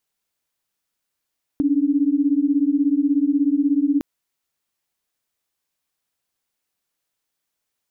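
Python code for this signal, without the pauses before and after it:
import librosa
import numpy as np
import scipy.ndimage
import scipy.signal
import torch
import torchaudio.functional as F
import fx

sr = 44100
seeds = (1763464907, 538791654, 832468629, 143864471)

y = fx.chord(sr, length_s=2.41, notes=(61, 62), wave='sine', level_db=-18.5)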